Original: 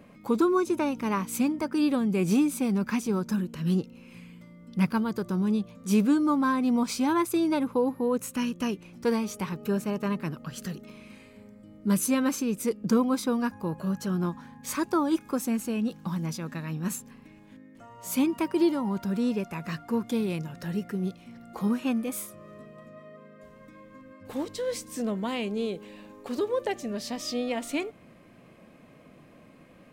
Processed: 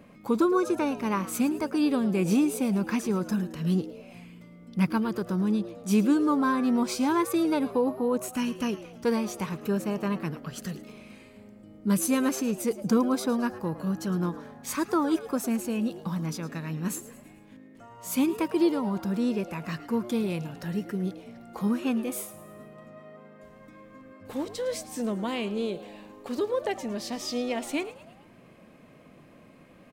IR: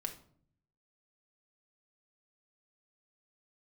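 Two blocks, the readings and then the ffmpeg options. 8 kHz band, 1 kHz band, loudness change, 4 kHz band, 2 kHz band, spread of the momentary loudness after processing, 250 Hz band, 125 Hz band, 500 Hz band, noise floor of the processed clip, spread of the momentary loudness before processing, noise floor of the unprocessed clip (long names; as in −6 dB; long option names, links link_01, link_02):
0.0 dB, 0.0 dB, 0.0 dB, 0.0 dB, 0.0 dB, 14 LU, 0.0 dB, 0.0 dB, +0.5 dB, −53 dBFS, 13 LU, −53 dBFS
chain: -filter_complex "[0:a]asplit=5[link_01][link_02][link_03][link_04][link_05];[link_02]adelay=109,afreqshift=130,volume=-16dB[link_06];[link_03]adelay=218,afreqshift=260,volume=-22.7dB[link_07];[link_04]adelay=327,afreqshift=390,volume=-29.5dB[link_08];[link_05]adelay=436,afreqshift=520,volume=-36.2dB[link_09];[link_01][link_06][link_07][link_08][link_09]amix=inputs=5:normalize=0"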